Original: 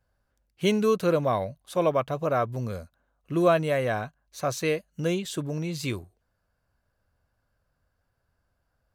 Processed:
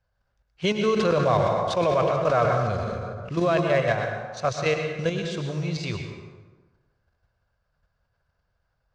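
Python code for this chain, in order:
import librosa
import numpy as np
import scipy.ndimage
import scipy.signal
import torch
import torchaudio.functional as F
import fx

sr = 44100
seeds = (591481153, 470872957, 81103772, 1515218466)

y = fx.block_float(x, sr, bits=5)
y = scipy.signal.sosfilt(scipy.signal.butter(4, 5900.0, 'lowpass', fs=sr, output='sos'), y)
y = fx.peak_eq(y, sr, hz=280.0, db=-9.5, octaves=0.78)
y = fx.level_steps(y, sr, step_db=9)
y = fx.rev_plate(y, sr, seeds[0], rt60_s=1.3, hf_ratio=0.6, predelay_ms=95, drr_db=4.0)
y = fx.sustainer(y, sr, db_per_s=20.0, at=(0.96, 3.6), fade=0.02)
y = y * 10.0 ** (6.0 / 20.0)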